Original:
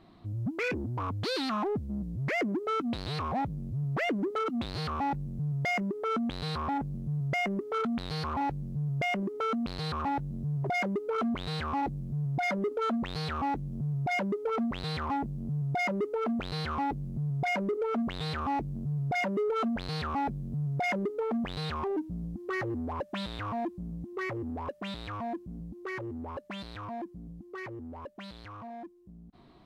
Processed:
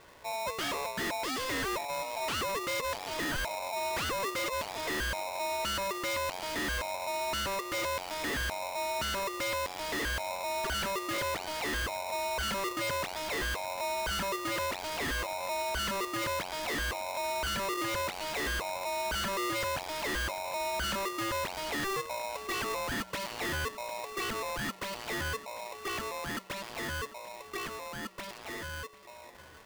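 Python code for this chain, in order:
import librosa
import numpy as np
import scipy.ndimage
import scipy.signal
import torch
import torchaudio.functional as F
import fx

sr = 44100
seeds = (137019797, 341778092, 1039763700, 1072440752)

p1 = fx.peak_eq(x, sr, hz=1200.0, db=7.0, octaves=1.4)
p2 = fx.hum_notches(p1, sr, base_hz=60, count=2)
p3 = np.clip(p2, -10.0 ** (-31.5 / 20.0), 10.0 ** (-31.5 / 20.0))
p4 = p3 + fx.echo_feedback(p3, sr, ms=746, feedback_pct=56, wet_db=-18, dry=0)
y = p4 * np.sign(np.sin(2.0 * np.pi * 780.0 * np.arange(len(p4)) / sr))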